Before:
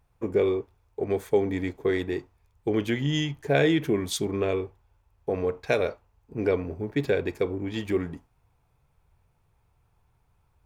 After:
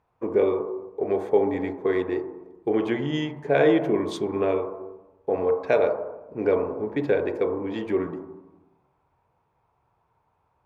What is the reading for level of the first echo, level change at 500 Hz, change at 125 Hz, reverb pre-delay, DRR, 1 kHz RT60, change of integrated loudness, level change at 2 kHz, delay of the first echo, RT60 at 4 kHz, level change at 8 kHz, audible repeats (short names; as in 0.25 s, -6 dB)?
none, +3.5 dB, -4.5 dB, 19 ms, 3.0 dB, 0.95 s, +2.5 dB, -0.5 dB, none, 0.80 s, under -10 dB, none